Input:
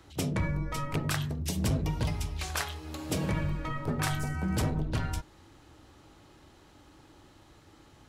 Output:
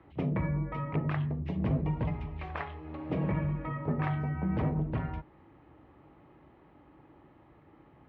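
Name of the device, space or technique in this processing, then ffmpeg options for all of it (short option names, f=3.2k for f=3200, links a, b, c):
bass cabinet: -af "highpass=64,equalizer=f=94:t=q:w=4:g=-7,equalizer=f=150:t=q:w=4:g=3,equalizer=f=1.5k:t=q:w=4:g=-8,lowpass=f=2.1k:w=0.5412,lowpass=f=2.1k:w=1.3066"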